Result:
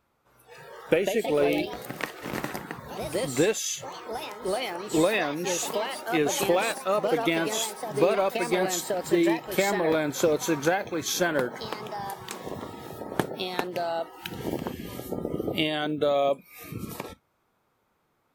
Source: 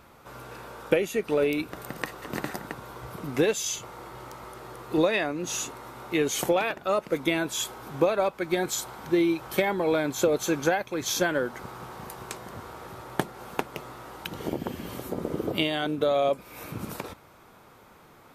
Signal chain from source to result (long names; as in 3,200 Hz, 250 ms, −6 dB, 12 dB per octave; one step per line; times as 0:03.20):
delay with pitch and tempo change per echo 296 ms, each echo +3 semitones, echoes 3, each echo −6 dB
log-companded quantiser 8 bits
noise reduction from a noise print of the clip's start 18 dB